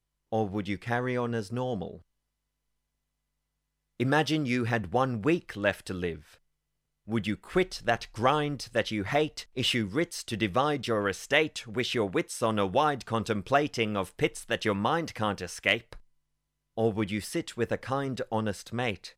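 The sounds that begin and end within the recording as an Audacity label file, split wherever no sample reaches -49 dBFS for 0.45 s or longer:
4.000000	6.350000	sound
7.070000	16.000000	sound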